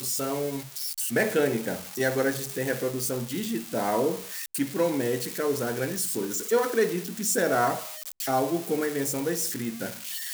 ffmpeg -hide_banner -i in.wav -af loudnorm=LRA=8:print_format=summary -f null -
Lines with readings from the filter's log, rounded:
Input Integrated:    -27.6 LUFS
Input True Peak:     -10.8 dBTP
Input LRA:             1.8 LU
Input Threshold:     -37.6 LUFS